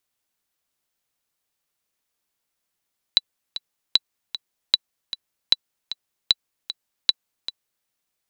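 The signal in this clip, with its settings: metronome 153 bpm, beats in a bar 2, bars 6, 3.96 kHz, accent 13.5 dB -1.5 dBFS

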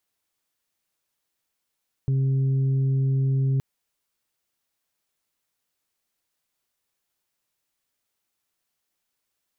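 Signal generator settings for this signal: steady additive tone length 1.52 s, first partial 134 Hz, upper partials -19/-20 dB, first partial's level -19 dB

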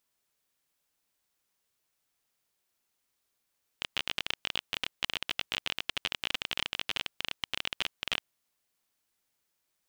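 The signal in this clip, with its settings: random clicks 27 per s -13 dBFS 4.48 s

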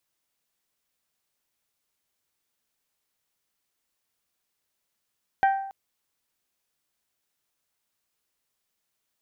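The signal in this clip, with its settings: glass hit bell, length 0.28 s, lowest mode 781 Hz, decay 0.76 s, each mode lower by 8 dB, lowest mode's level -15.5 dB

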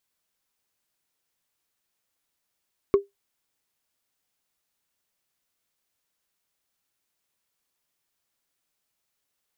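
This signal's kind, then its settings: wood hit, lowest mode 399 Hz, decay 0.16 s, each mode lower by 12 dB, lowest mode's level -10 dB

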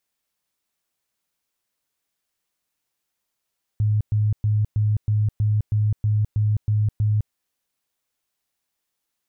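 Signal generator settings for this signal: tone bursts 106 Hz, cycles 22, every 0.32 s, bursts 11, -16.5 dBFS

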